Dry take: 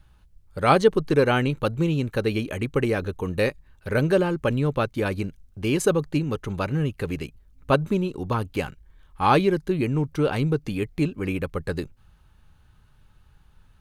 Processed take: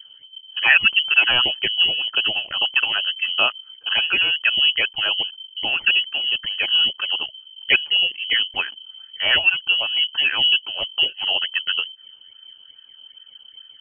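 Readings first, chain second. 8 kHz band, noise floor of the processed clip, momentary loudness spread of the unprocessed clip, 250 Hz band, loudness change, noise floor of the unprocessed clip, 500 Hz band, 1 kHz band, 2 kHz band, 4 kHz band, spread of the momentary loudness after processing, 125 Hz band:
under -40 dB, -49 dBFS, 11 LU, -19.5 dB, +6.5 dB, -57 dBFS, -14.0 dB, -6.0 dB, +13.0 dB, +23.0 dB, 10 LU, under -20 dB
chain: phase shifter stages 6, 2.4 Hz, lowest notch 220–1100 Hz; frequency inversion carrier 3.1 kHz; trim +6 dB

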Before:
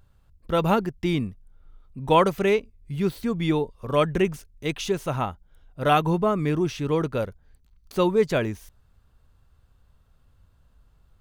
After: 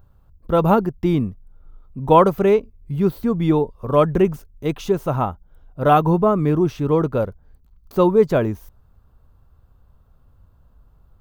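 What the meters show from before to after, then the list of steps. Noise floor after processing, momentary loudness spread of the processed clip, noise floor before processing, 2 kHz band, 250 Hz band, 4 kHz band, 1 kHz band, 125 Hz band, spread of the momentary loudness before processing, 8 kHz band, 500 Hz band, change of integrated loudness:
-55 dBFS, 12 LU, -61 dBFS, -2.0 dB, +6.0 dB, -4.5 dB, +5.5 dB, +6.0 dB, 11 LU, no reading, +6.0 dB, +5.5 dB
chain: high-order bell 4.3 kHz -10.5 dB 3 oct; trim +6 dB

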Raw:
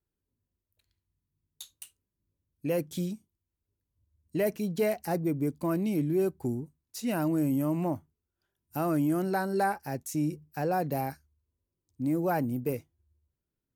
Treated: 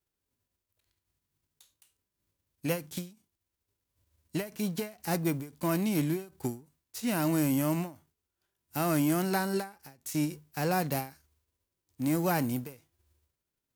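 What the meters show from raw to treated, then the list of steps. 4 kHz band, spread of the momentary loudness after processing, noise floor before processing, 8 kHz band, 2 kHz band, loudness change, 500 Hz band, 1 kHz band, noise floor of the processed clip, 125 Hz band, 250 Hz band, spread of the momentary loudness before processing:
+5.5 dB, 13 LU, under -85 dBFS, +5.0 dB, +1.0 dB, -1.0 dB, -4.0 dB, -2.0 dB, under -85 dBFS, 0.0 dB, -1.0 dB, 12 LU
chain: formants flattened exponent 0.6; endings held to a fixed fall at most 170 dB/s

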